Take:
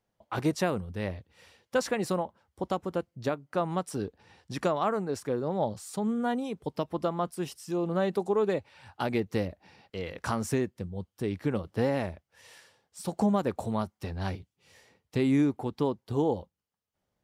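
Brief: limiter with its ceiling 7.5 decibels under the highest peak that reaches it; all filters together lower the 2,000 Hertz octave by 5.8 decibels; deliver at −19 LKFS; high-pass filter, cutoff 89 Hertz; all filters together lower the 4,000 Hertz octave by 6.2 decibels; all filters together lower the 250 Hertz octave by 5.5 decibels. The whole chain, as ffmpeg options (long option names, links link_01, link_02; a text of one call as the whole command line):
ffmpeg -i in.wav -af "highpass=89,equalizer=frequency=250:width_type=o:gain=-7,equalizer=frequency=2000:width_type=o:gain=-6.5,equalizer=frequency=4000:width_type=o:gain=-6,volume=18dB,alimiter=limit=-6.5dB:level=0:latency=1" out.wav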